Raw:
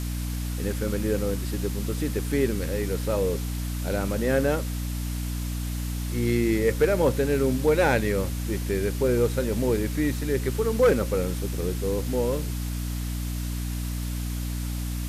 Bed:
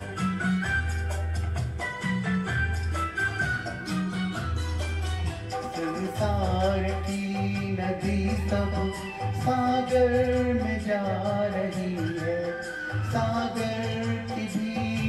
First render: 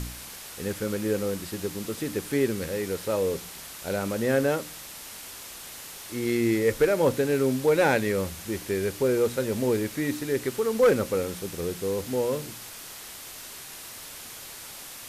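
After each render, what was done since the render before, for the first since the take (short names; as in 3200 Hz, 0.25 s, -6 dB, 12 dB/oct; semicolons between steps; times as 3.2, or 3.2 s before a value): de-hum 60 Hz, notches 5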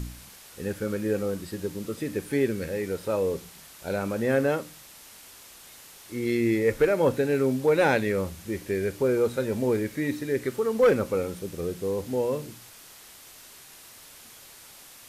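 noise print and reduce 7 dB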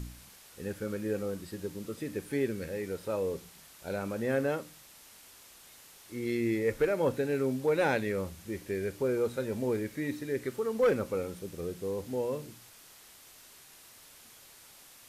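gain -6 dB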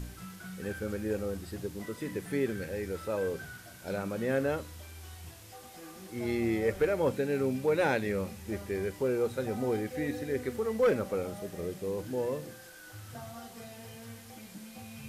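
add bed -18.5 dB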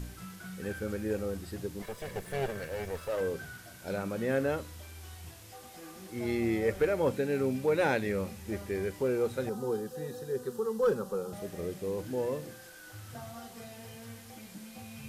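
1.82–3.21 minimum comb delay 1.8 ms; 9.49–11.33 fixed phaser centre 430 Hz, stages 8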